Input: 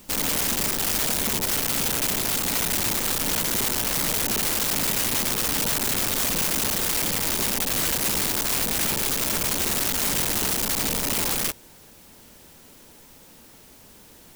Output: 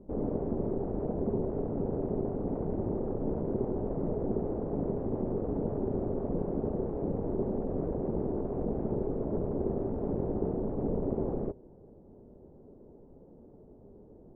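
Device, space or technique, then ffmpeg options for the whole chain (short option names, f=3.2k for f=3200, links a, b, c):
under water: -af "lowpass=f=630:w=0.5412,lowpass=f=630:w=1.3066,equalizer=f=400:t=o:w=0.28:g=7"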